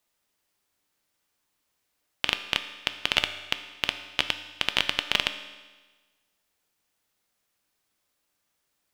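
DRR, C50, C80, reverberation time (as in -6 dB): 8.5 dB, 11.0 dB, 12.5 dB, 1.3 s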